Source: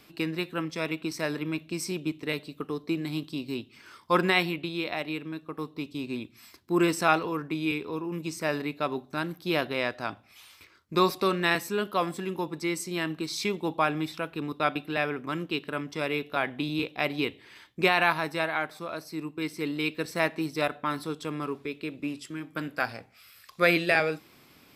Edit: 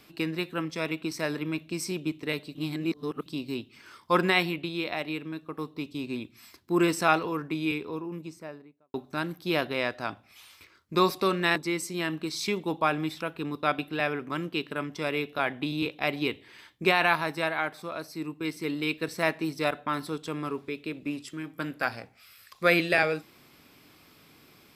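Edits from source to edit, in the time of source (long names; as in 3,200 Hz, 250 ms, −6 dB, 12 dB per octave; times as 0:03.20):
0:02.55–0:03.26: reverse
0:07.62–0:08.94: fade out and dull
0:11.56–0:12.53: remove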